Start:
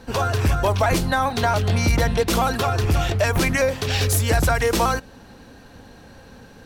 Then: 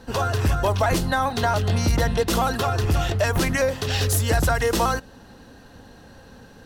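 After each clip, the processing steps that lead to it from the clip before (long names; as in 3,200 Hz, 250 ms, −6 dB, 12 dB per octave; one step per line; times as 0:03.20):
notch filter 2,300 Hz, Q 10
level −1.5 dB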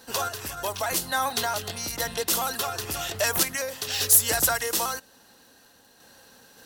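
sample-and-hold tremolo, depth 55%
surface crackle 11 per second −52 dBFS
RIAA equalisation recording
level −3 dB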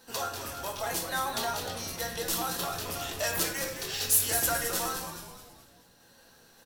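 on a send: echo with shifted repeats 213 ms, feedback 45%, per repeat −150 Hz, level −8 dB
on the sum: rectangular room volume 190 cubic metres, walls mixed, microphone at 0.76 metres
level −7.5 dB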